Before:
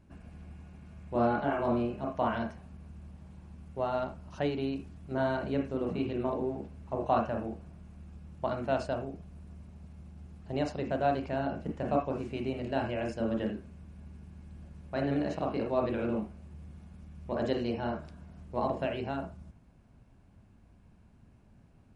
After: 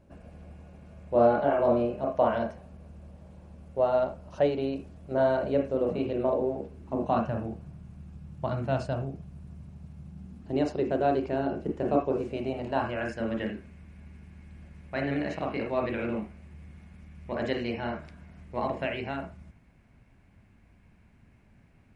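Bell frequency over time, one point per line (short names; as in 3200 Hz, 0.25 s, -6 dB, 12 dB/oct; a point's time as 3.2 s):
bell +11.5 dB 0.7 oct
6.59 s 550 Hz
7.33 s 130 Hz
10.03 s 130 Hz
10.65 s 380 Hz
12.08 s 380 Hz
13.28 s 2100 Hz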